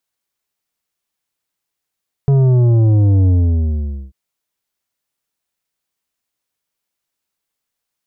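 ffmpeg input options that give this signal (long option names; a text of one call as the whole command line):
ffmpeg -f lavfi -i "aevalsrc='0.335*clip((1.84-t)/0.84,0,1)*tanh(2.82*sin(2*PI*140*1.84/log(65/140)*(exp(log(65/140)*t/1.84)-1)))/tanh(2.82)':duration=1.84:sample_rate=44100" out.wav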